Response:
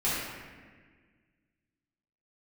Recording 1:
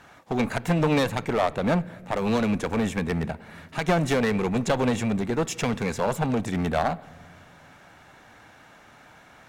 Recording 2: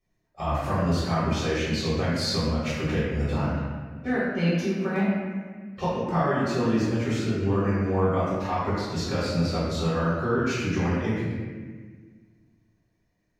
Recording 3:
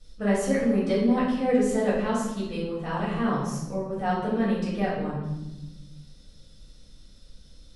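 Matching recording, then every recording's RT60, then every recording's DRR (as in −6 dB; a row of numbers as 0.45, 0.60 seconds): 2; non-exponential decay, 1.6 s, 1.0 s; 18.5, −11.5, −8.0 decibels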